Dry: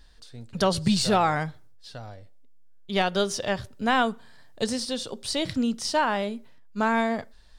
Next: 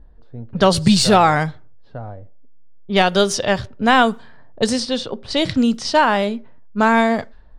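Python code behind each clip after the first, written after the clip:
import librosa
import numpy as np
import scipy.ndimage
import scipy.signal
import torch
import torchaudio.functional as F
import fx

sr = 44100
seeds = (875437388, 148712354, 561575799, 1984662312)

y = fx.env_lowpass(x, sr, base_hz=580.0, full_db=-22.0)
y = y * librosa.db_to_amplitude(9.0)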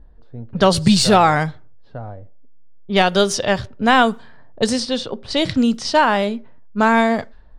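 y = x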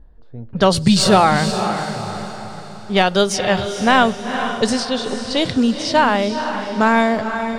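y = fx.echo_diffused(x, sr, ms=462, feedback_pct=45, wet_db=-8.0)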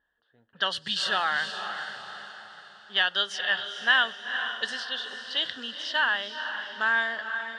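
y = fx.double_bandpass(x, sr, hz=2300.0, octaves=0.83)
y = y * librosa.db_to_amplitude(1.5)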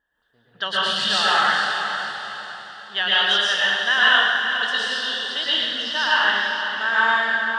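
y = fx.rev_plate(x, sr, seeds[0], rt60_s=1.4, hf_ratio=0.95, predelay_ms=100, drr_db=-8.0)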